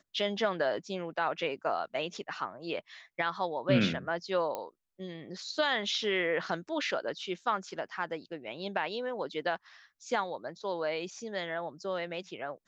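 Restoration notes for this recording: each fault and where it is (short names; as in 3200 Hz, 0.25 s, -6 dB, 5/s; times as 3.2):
4.55 pop -21 dBFS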